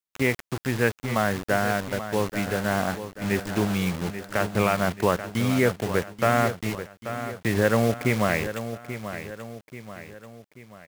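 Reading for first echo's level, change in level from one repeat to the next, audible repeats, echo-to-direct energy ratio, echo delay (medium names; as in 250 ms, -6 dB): -11.0 dB, -6.5 dB, 3, -10.0 dB, 835 ms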